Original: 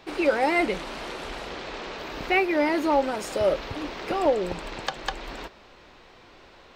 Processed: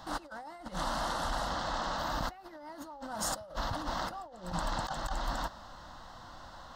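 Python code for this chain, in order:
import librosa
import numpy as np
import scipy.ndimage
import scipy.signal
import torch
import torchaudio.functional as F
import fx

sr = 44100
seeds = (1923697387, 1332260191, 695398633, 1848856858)

y = fx.over_compress(x, sr, threshold_db=-35.0, ratio=-1.0)
y = fx.fixed_phaser(y, sr, hz=990.0, stages=4)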